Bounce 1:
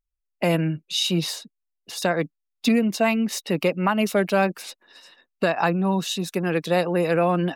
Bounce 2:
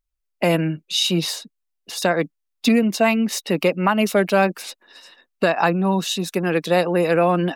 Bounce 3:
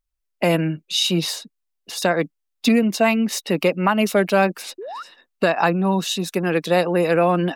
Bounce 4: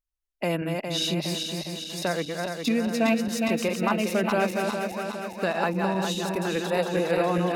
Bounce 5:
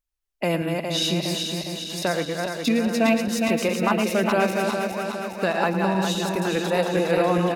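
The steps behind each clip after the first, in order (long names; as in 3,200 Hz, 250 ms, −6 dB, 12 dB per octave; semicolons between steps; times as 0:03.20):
parametric band 130 Hz −7.5 dB 0.49 octaves; level +3.5 dB
sound drawn into the spectrogram rise, 0:04.78–0:05.03, 340–1,500 Hz −32 dBFS
feedback delay that plays each chunk backwards 205 ms, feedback 76%, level −4 dB; level −8.5 dB
single-tap delay 110 ms −12 dB; level +3 dB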